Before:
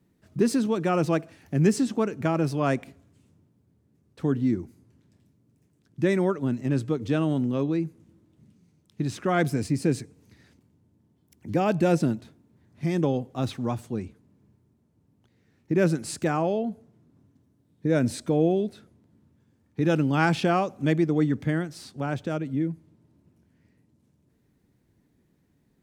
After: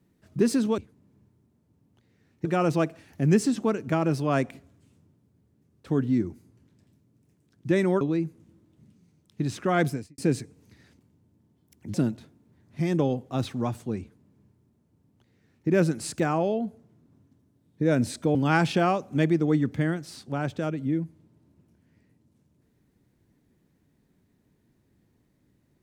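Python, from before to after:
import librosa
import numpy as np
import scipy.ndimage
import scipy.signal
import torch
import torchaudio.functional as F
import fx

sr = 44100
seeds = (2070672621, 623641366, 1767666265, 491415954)

y = fx.edit(x, sr, fx.cut(start_s=6.34, length_s=1.27),
    fx.fade_out_span(start_s=9.48, length_s=0.3, curve='qua'),
    fx.cut(start_s=11.54, length_s=0.44),
    fx.duplicate(start_s=14.05, length_s=1.67, to_s=0.78),
    fx.cut(start_s=18.39, length_s=1.64), tone=tone)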